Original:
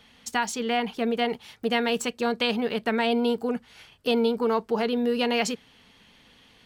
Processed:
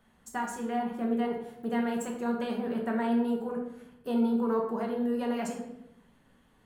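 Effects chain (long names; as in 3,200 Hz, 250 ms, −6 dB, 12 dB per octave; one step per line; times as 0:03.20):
flat-topped bell 3,600 Hz −13.5 dB
convolution reverb RT60 0.85 s, pre-delay 5 ms, DRR 0 dB
level −8.5 dB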